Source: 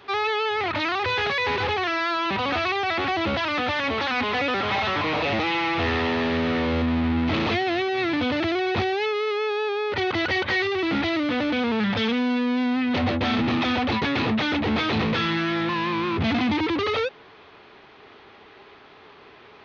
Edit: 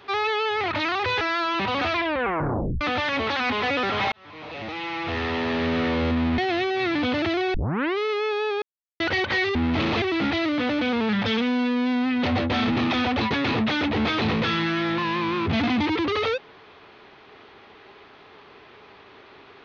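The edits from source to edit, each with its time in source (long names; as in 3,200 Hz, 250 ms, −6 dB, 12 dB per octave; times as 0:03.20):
0:01.21–0:01.92: remove
0:02.62: tape stop 0.90 s
0:04.83–0:06.46: fade in
0:07.09–0:07.56: move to 0:10.73
0:08.72: tape start 0.44 s
0:09.80–0:10.18: silence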